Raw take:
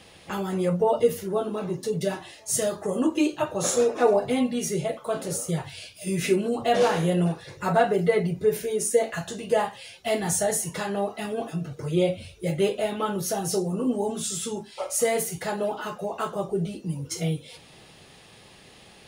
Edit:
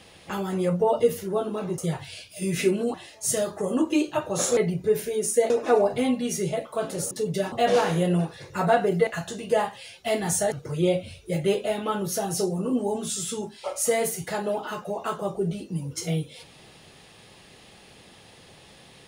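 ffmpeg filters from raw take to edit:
-filter_complex "[0:a]asplit=9[s0][s1][s2][s3][s4][s5][s6][s7][s8];[s0]atrim=end=1.782[s9];[s1]atrim=start=5.428:end=6.592[s10];[s2]atrim=start=2.188:end=3.822[s11];[s3]atrim=start=8.138:end=9.072[s12];[s4]atrim=start=3.818:end=5.432[s13];[s5]atrim=start=1.778:end=2.192[s14];[s6]atrim=start=6.588:end=8.142[s15];[s7]atrim=start=9.068:end=10.522[s16];[s8]atrim=start=11.658[s17];[s9][s10]acrossfade=d=0.004:c1=hsin:c2=hsin[s18];[s18][s11]acrossfade=d=0.004:c1=hsin:c2=hsin[s19];[s19][s12]acrossfade=d=0.004:c1=hsin:c2=hsin[s20];[s20][s13]acrossfade=d=0.004:c1=hsin:c2=hsin[s21];[s21][s14]acrossfade=d=0.004:c1=hsin:c2=hsin[s22];[s22][s15]acrossfade=d=0.004:c1=hsin:c2=hsin[s23];[s23][s16]acrossfade=d=0.004:c1=hsin:c2=hsin[s24];[s24][s17]acrossfade=d=0.004:c1=hsin:c2=hsin"

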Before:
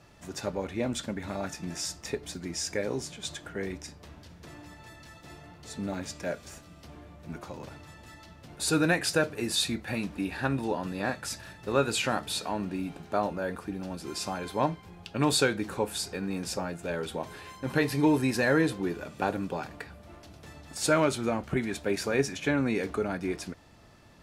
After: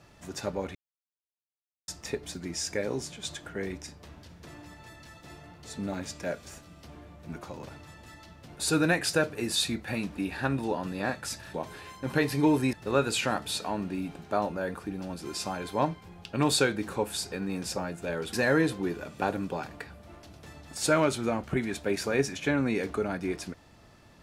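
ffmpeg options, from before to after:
-filter_complex "[0:a]asplit=6[s0][s1][s2][s3][s4][s5];[s0]atrim=end=0.75,asetpts=PTS-STARTPTS,afade=t=out:st=0.746:d=0.004:c=hsin[s6];[s1]atrim=start=0.75:end=1.88,asetpts=PTS-STARTPTS,volume=0[s7];[s2]atrim=start=1.88:end=11.542,asetpts=PTS-STARTPTS,afade=t=in:d=0.004:c=hsin[s8];[s3]atrim=start=17.138:end=18.332[s9];[s4]atrim=start=11.538:end=17.142[s10];[s5]atrim=start=18.328[s11];[s6][s7][s8]concat=n=3:v=0:a=1[s12];[s12][s9]acrossfade=d=0.004:c1=hsin:c2=hsin[s13];[s13][s10]acrossfade=d=0.004:c1=hsin:c2=hsin[s14];[s14][s11]acrossfade=d=0.004:c1=hsin:c2=hsin"

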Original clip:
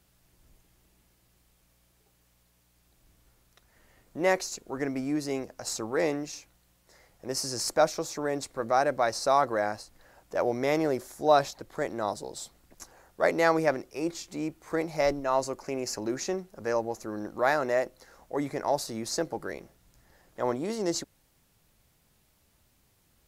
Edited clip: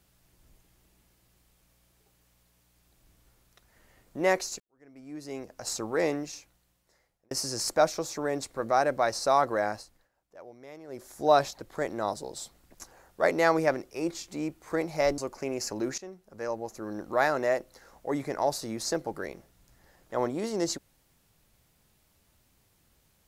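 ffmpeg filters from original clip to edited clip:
-filter_complex "[0:a]asplit=7[s0][s1][s2][s3][s4][s5][s6];[s0]atrim=end=4.6,asetpts=PTS-STARTPTS,afade=t=out:st=4.596:d=0.004:c=hsin[s7];[s1]atrim=start=4.6:end=7.31,asetpts=PTS-STARTPTS,afade=t=in:d=1.07:c=qua,afade=t=out:st=1.58:d=1.13[s8];[s2]atrim=start=7.31:end=10.09,asetpts=PTS-STARTPTS,afade=t=in:d=0.004:c=hsin,afade=t=out:st=2.44:d=0.34:silence=0.0944061[s9];[s3]atrim=start=10.09:end=10.87,asetpts=PTS-STARTPTS,volume=0.0944[s10];[s4]atrim=start=10.87:end=15.182,asetpts=PTS-STARTPTS,afade=t=in:d=0.34:silence=0.0944061[s11];[s5]atrim=start=15.438:end=16.24,asetpts=PTS-STARTPTS,afade=t=out:st=0.798:d=0.004:c=hsin:silence=0.177828[s12];[s6]atrim=start=16.24,asetpts=PTS-STARTPTS,afade=t=in:d=1.09:silence=0.177828[s13];[s7][s8][s9][s10][s11]concat=n=5:v=0:a=1[s14];[s12][s13]concat=n=2:v=0:a=1[s15];[s14][s15]acrossfade=d=0.004:c1=hsin:c2=hsin"

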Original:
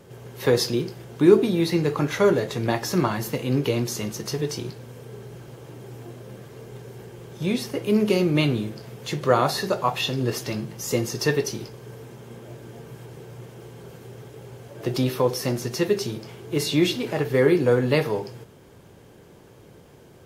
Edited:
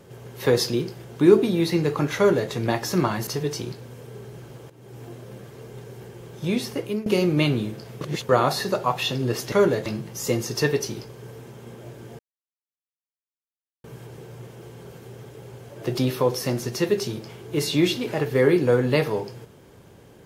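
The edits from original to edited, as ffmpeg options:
-filter_complex "[0:a]asplit=9[s0][s1][s2][s3][s4][s5][s6][s7][s8];[s0]atrim=end=3.272[s9];[s1]atrim=start=4.248:end=5.68,asetpts=PTS-STARTPTS,afade=t=out:st=1.428:d=0.004:c=hsin:silence=0.188365[s10];[s2]atrim=start=5.68:end=8.04,asetpts=PTS-STARTPTS,afade=t=in:d=0.33:silence=0.188365,afade=t=out:st=2.09:d=0.27:silence=0.1[s11];[s3]atrim=start=8.04:end=8.992,asetpts=PTS-STARTPTS,afade=t=in:d=0.004:c=hsin:silence=0.1[s12];[s4]atrim=start=8.988:end=9.272,asetpts=PTS-STARTPTS,areverse[s13];[s5]atrim=start=9.268:end=10.502[s14];[s6]atrim=start=2.168:end=2.512[s15];[s7]atrim=start=10.498:end=12.83,asetpts=PTS-STARTPTS,afade=t=out:st=2.328:d=0.004:c=hsin,apad=pad_dur=1.65[s16];[s8]atrim=start=12.83,asetpts=PTS-STARTPTS,afade=t=in:d=0.004:c=hsin[s17];[s10][s11][s12]concat=n=3:v=0:a=1[s18];[s9][s18]acrossfade=d=0.004:c1=hsin:c2=hsin[s19];[s19][s13]acrossfade=d=0.004:c1=hsin:c2=hsin[s20];[s20][s14]acrossfade=d=0.004:c1=hsin:c2=hsin[s21];[s21][s15]acrossfade=d=0.004:c1=hsin:c2=hsin[s22];[s16][s17]concat=n=2:v=0:a=1[s23];[s22][s23]acrossfade=d=0.004:c1=hsin:c2=hsin"

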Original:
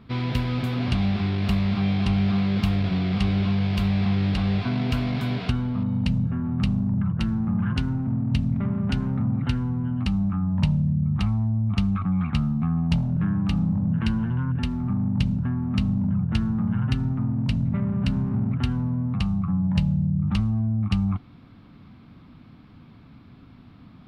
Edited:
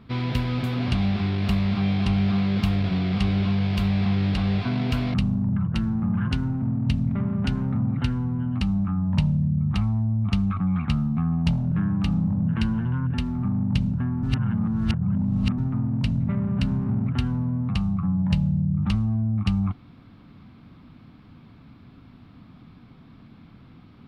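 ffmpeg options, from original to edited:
-filter_complex "[0:a]asplit=4[s0][s1][s2][s3];[s0]atrim=end=5.142[s4];[s1]atrim=start=6.588:end=15.682[s5];[s2]atrim=start=15.678:end=17.032,asetpts=PTS-STARTPTS,areverse[s6];[s3]atrim=start=17.028[s7];[s4][s5]acrossfade=d=0.004:c1=hsin:c2=hsin[s8];[s8][s6]acrossfade=d=0.004:c1=hsin:c2=hsin[s9];[s9][s7]acrossfade=d=0.004:c1=hsin:c2=hsin"

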